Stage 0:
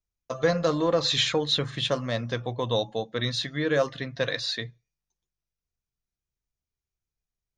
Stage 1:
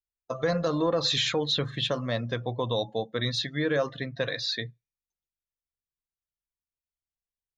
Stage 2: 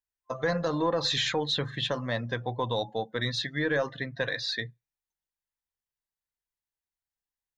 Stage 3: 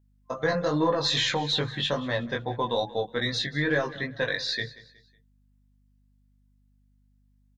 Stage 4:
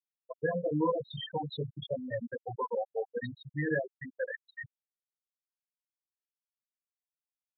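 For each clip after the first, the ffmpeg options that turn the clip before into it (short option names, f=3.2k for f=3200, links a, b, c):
-af "afftdn=nr=13:nf=-42,alimiter=limit=-16.5dB:level=0:latency=1:release=45"
-af "superequalizer=9b=1.78:11b=1.78,aeval=exprs='0.2*(cos(1*acos(clip(val(0)/0.2,-1,1)))-cos(1*PI/2))+0.00316*(cos(4*acos(clip(val(0)/0.2,-1,1)))-cos(4*PI/2))':c=same,volume=-2dB"
-af "flanger=delay=19:depth=2.3:speed=2.4,aeval=exprs='val(0)+0.000398*(sin(2*PI*50*n/s)+sin(2*PI*2*50*n/s)/2+sin(2*PI*3*50*n/s)/3+sin(2*PI*4*50*n/s)/4+sin(2*PI*5*50*n/s)/5)':c=same,aecho=1:1:184|368|552:0.112|0.0415|0.0154,volume=5.5dB"
-af "aemphasis=mode=reproduction:type=cd,afftfilt=real='re*gte(hypot(re,im),0.2)':imag='im*gte(hypot(re,im),0.2)':win_size=1024:overlap=0.75,aresample=8000,aresample=44100,volume=-4.5dB"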